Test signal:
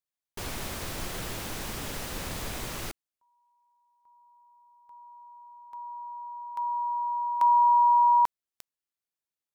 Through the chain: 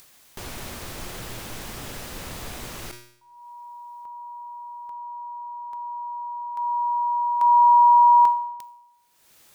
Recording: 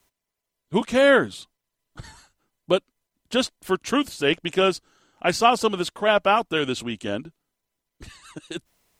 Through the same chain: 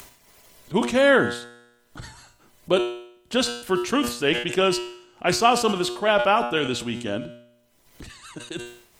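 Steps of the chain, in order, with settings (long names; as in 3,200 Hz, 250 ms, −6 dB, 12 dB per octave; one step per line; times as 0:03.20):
upward compression 4 to 1, threshold −37 dBFS
tuned comb filter 120 Hz, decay 0.99 s, harmonics all, mix 60%
level that may fall only so fast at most 92 dB per second
level +6.5 dB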